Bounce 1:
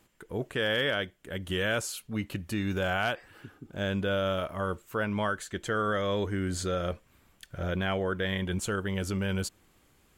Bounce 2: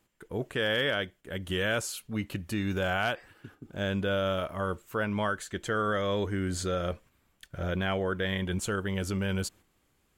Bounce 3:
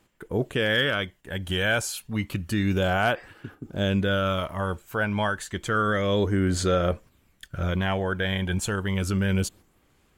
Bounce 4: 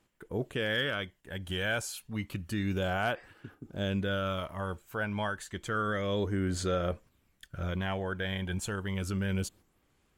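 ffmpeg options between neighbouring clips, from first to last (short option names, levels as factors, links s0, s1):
-af "agate=range=0.447:threshold=0.00282:ratio=16:detection=peak"
-af "aphaser=in_gain=1:out_gain=1:delay=1.3:decay=0.37:speed=0.3:type=sinusoidal,volume=1.58"
-af "volume=0.422" -ar 44100 -c:a sbc -b:a 192k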